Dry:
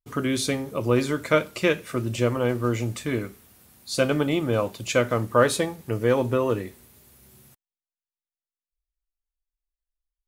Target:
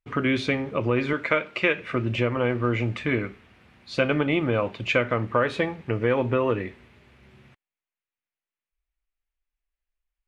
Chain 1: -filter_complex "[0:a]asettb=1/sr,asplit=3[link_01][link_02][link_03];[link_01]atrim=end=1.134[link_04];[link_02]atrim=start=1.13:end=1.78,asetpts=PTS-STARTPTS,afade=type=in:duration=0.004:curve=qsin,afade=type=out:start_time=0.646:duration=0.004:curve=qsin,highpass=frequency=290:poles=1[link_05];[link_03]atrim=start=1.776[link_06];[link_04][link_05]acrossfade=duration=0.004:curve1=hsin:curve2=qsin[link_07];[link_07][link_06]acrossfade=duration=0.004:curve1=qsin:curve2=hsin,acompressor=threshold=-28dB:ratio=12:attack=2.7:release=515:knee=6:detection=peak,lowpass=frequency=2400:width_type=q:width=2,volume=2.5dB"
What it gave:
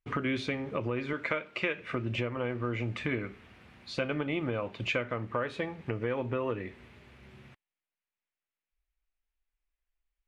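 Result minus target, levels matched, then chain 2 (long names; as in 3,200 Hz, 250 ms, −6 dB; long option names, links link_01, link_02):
downward compressor: peak gain reduction +10 dB
-filter_complex "[0:a]asettb=1/sr,asplit=3[link_01][link_02][link_03];[link_01]atrim=end=1.134[link_04];[link_02]atrim=start=1.13:end=1.78,asetpts=PTS-STARTPTS,afade=type=in:duration=0.004:curve=qsin,afade=type=out:start_time=0.646:duration=0.004:curve=qsin,highpass=frequency=290:poles=1[link_05];[link_03]atrim=start=1.776[link_06];[link_04][link_05]acrossfade=duration=0.004:curve1=hsin:curve2=qsin[link_07];[link_07][link_06]acrossfade=duration=0.004:curve1=qsin:curve2=hsin,acompressor=threshold=-17dB:ratio=12:attack=2.7:release=515:knee=6:detection=peak,lowpass=frequency=2400:width_type=q:width=2,volume=2.5dB"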